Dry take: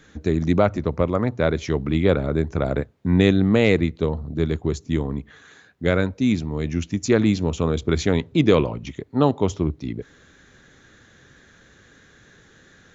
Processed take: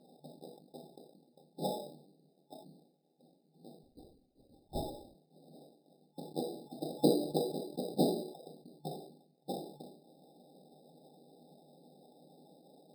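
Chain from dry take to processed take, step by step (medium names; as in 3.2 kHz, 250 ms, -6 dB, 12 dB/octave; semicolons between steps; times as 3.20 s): four frequency bands reordered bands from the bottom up 4123; dynamic bell 360 Hz, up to +4 dB, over -49 dBFS, Q 2.4; harmonic-percussive split percussive +5 dB; bass shelf 460 Hz +11 dB; in parallel at 0 dB: compression, threshold -30 dBFS, peak gain reduction 21 dB; on the sum: peak limiter -10 dBFS, peak gain reduction 11.5 dB; FFT band-pass 140–840 Hz; on a send at -4.5 dB: reverberation RT60 0.35 s, pre-delay 3 ms; 3.83–5.15 s: on the sum: LPC vocoder at 8 kHz whisper; sample-and-hold 10×; decay stretcher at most 77 dB/s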